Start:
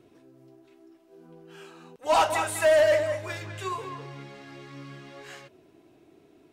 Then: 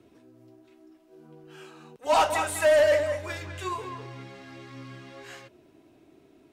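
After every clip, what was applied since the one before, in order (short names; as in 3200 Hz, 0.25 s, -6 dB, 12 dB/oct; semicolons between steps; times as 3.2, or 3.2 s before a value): frequency shift -13 Hz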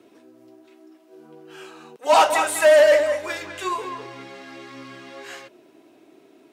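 HPF 270 Hz 12 dB/oct; gain +6.5 dB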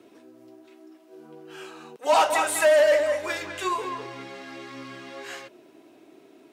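compressor 1.5:1, threshold -23 dBFS, peak gain reduction 5 dB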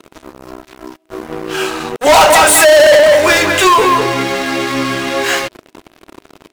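sample leveller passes 5; gain +5.5 dB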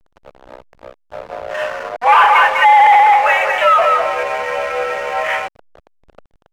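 mistuned SSB +230 Hz 190–2500 Hz; backlash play -24 dBFS; gain -2 dB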